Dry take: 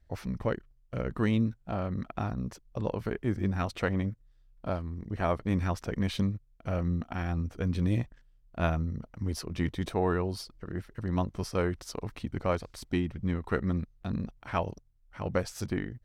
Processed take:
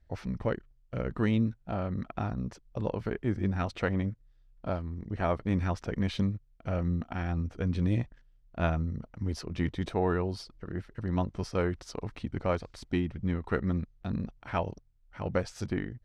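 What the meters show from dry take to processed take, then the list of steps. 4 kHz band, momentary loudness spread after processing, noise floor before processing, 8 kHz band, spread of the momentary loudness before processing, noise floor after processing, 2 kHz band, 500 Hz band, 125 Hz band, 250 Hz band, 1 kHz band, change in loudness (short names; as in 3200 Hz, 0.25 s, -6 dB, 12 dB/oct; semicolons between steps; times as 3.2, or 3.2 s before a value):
-2.0 dB, 10 LU, -63 dBFS, -5.0 dB, 10 LU, -63 dBFS, -0.5 dB, 0.0 dB, 0.0 dB, 0.0 dB, -0.5 dB, 0.0 dB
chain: air absorption 61 m; notch 1100 Hz, Q 19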